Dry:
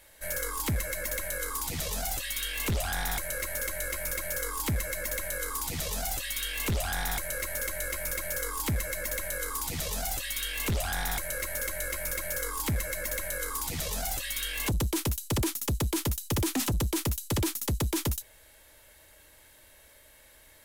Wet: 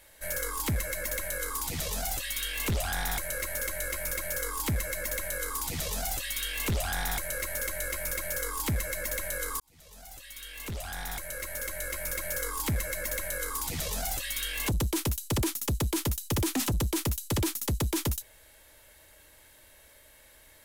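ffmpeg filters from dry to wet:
ffmpeg -i in.wav -filter_complex "[0:a]asplit=2[link_01][link_02];[link_01]atrim=end=9.6,asetpts=PTS-STARTPTS,afade=type=out:start_time=9.596:duration=0.004:curve=hsin[link_03];[link_02]atrim=start=9.6,asetpts=PTS-STARTPTS,afade=type=in:duration=2.73[link_04];[link_03][link_04]concat=n=2:v=0:a=1" out.wav

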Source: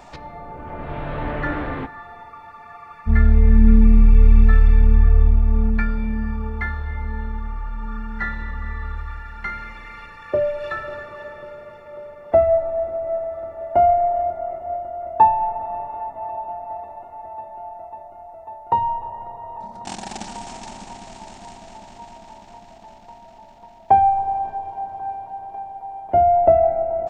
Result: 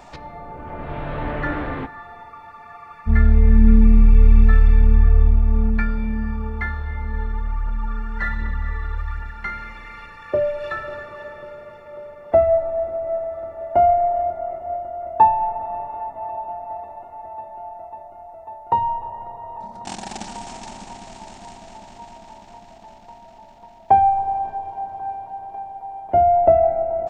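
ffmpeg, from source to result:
ffmpeg -i in.wav -filter_complex "[0:a]asplit=3[link_01][link_02][link_03];[link_01]afade=type=out:start_time=7.12:duration=0.02[link_04];[link_02]aphaser=in_gain=1:out_gain=1:delay=2.9:decay=0.45:speed=1.3:type=triangular,afade=type=in:start_time=7.12:duration=0.02,afade=type=out:start_time=9.3:duration=0.02[link_05];[link_03]afade=type=in:start_time=9.3:duration=0.02[link_06];[link_04][link_05][link_06]amix=inputs=3:normalize=0" out.wav

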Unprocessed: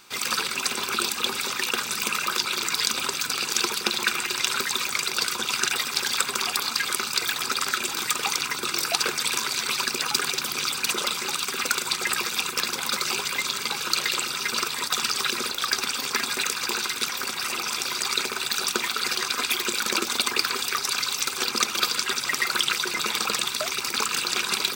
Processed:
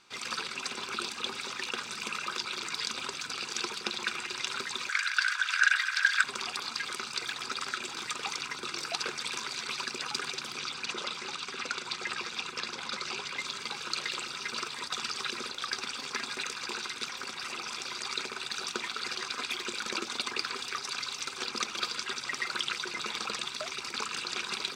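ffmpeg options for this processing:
ffmpeg -i in.wav -filter_complex "[0:a]asettb=1/sr,asplit=3[link_01][link_02][link_03];[link_01]atrim=end=4.894[link_04];[link_02]atrim=start=4.89:end=6.24,asetpts=PTS-STARTPTS,afade=type=in:duration=0.004:curve=qsin,afade=type=out:start_time=1.346:duration=0.004:curve=qsin,highpass=frequency=1600:width_type=q:width=8.9[link_05];[link_03]atrim=start=6.236[link_06];[link_04][link_05]acrossfade=duration=0.004:curve1=hsin:curve2=qsin[link_07];[link_07][link_06]acrossfade=duration=0.004:curve1=qsin:curve2=hsin,asettb=1/sr,asplit=3[link_08][link_09][link_10];[link_08]atrim=end=10.584[link_11];[link_09]atrim=start=10.58:end=13.38,asetpts=PTS-STARTPTS,afade=type=in:duration=0.004:curve=qsin,afade=type=out:start_time=2.796:duration=0.004:curve=qsin,acrossover=split=7400[link_12][link_13];[link_13]acompressor=threshold=-42dB:ratio=4:attack=1:release=60[link_14];[link_12][link_14]amix=inputs=2:normalize=0[link_15];[link_10]atrim=start=13.376[link_16];[link_11][link_15]acrossfade=duration=0.004:curve1=hsin:curve2=qsin[link_17];[link_17][link_16]acrossfade=duration=0.004:curve1=qsin:curve2=hsin,lowpass=6300,volume=-8.5dB" out.wav

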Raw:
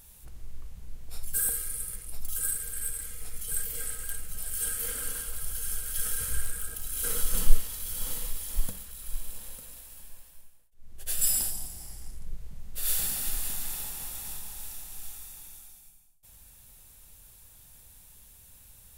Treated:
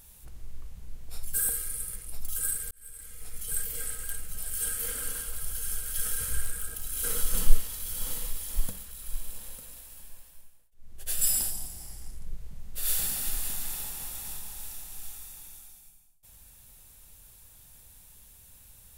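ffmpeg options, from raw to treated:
ffmpeg -i in.wav -filter_complex "[0:a]asplit=2[link_01][link_02];[link_01]atrim=end=2.71,asetpts=PTS-STARTPTS,afade=type=out:start_time=2.706:duration=0.004:curve=hsin[link_03];[link_02]atrim=start=2.71,asetpts=PTS-STARTPTS,afade=type=in:duration=0.75[link_04];[link_03][link_04]concat=n=2:v=0:a=1" out.wav

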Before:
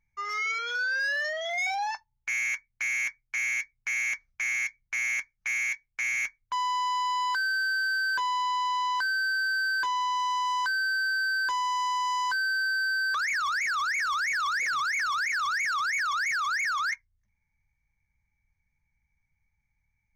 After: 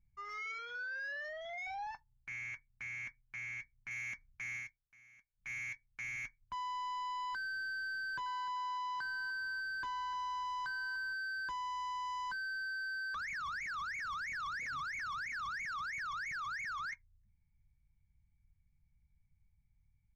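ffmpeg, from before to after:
ffmpeg -i in.wav -filter_complex "[0:a]asettb=1/sr,asplit=3[link_01][link_02][link_03];[link_01]atrim=end=0.654[link_04];[link_02]atrim=start=0.65:end=3.91,asetpts=PTS-STARTPTS,afade=type=in:duration=0.004:curve=qsin,afade=type=out:start_time=3.256:duration=0.004:curve=qsin,lowpass=frequency=3400:poles=1[link_05];[link_03]atrim=start=3.906[link_06];[link_04][link_05]acrossfade=duration=0.004:curve1=hsin:curve2=qsin[link_07];[link_07][link_06]acrossfade=duration=0.004:curve1=qsin:curve2=hsin,asettb=1/sr,asplit=3[link_08][link_09][link_10];[link_08]atrim=end=7.964[link_11];[link_09]atrim=start=7.96:end=11.13,asetpts=PTS-STARTPTS,afade=type=in:duration=0.004:curve=qsin,afade=type=out:start_time=3.166:duration=0.004:curve=qsin,aecho=1:1:300|600|900:0.178|0.048|0.013,atrim=end_sample=139797[link_12];[link_10]atrim=start=11.126[link_13];[link_11][link_12]acrossfade=duration=0.004:curve1=hsin:curve2=qsin[link_14];[link_14][link_13]acrossfade=duration=0.004:curve1=qsin:curve2=hsin,asplit=3[link_15][link_16][link_17];[link_15]atrim=end=4.78,asetpts=PTS-STARTPTS,afade=type=out:start_time=4.56:duration=0.22:silence=0.0891251[link_18];[link_16]atrim=start=4.78:end=5.29,asetpts=PTS-STARTPTS,volume=-21dB[link_19];[link_17]atrim=start=5.29,asetpts=PTS-STARTPTS,afade=type=in:duration=0.22:silence=0.0891251[link_20];[link_18][link_19][link_20]concat=n=3:v=0:a=1,firequalizer=gain_entry='entry(150,0);entry(430,-16);entry(8300,-25)':delay=0.05:min_phase=1,volume=5dB" out.wav

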